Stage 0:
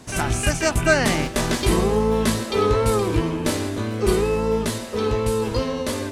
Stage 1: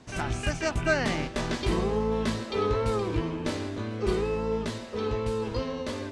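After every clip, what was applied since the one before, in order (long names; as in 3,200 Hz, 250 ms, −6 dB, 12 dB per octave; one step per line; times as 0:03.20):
low-pass filter 5,400 Hz 12 dB per octave
level −7.5 dB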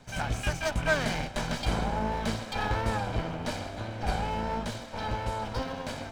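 lower of the sound and its delayed copy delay 1.3 ms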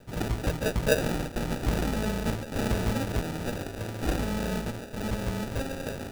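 decimation without filtering 41×
level +1.5 dB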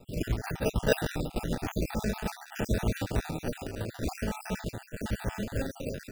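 time-frequency cells dropped at random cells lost 50%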